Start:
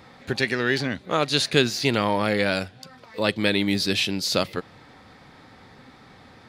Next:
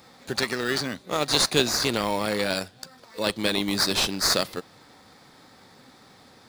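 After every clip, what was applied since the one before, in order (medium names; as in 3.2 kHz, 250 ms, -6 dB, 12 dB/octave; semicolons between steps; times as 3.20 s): high-pass 170 Hz 6 dB/octave; tone controls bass 0 dB, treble +13 dB; in parallel at -5.5 dB: sample-and-hold 14×; on the sum: trim -6 dB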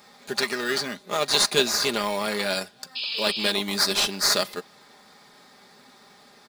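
bass shelf 210 Hz -10.5 dB; comb 4.9 ms, depth 58%; painted sound noise, 2.95–3.52 s, 2.3–5.2 kHz -30 dBFS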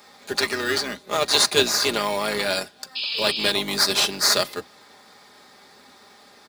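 octave divider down 2 oct, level +4 dB; high-pass 240 Hz 12 dB/octave; trim +2.5 dB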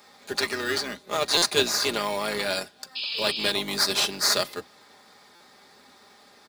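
buffer glitch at 1.37/5.35 s, samples 256, times 8; trim -3.5 dB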